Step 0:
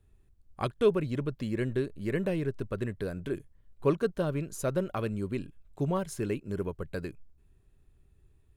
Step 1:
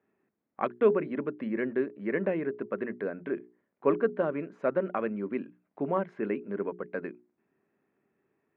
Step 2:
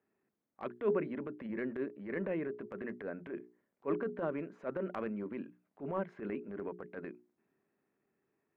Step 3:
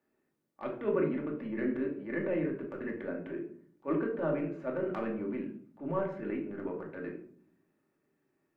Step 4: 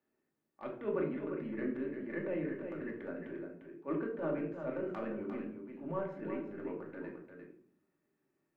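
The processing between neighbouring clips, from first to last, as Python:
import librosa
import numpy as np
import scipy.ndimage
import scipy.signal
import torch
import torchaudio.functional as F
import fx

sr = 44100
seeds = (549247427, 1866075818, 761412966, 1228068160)

y1 = scipy.signal.sosfilt(scipy.signal.cheby1(3, 1.0, [210.0, 2100.0], 'bandpass', fs=sr, output='sos'), x)
y1 = fx.low_shelf(y1, sr, hz=360.0, db=-3.0)
y1 = fx.hum_notches(y1, sr, base_hz=60, count=7)
y1 = y1 * 10.0 ** (4.5 / 20.0)
y2 = fx.transient(y1, sr, attack_db=-11, sustain_db=2)
y2 = y2 * 10.0 ** (-5.0 / 20.0)
y3 = fx.room_shoebox(y2, sr, seeds[0], volume_m3=720.0, walls='furnished', distance_m=2.5)
y4 = y3 + 10.0 ** (-7.5 / 20.0) * np.pad(y3, (int(350 * sr / 1000.0), 0))[:len(y3)]
y4 = y4 * 10.0 ** (-5.0 / 20.0)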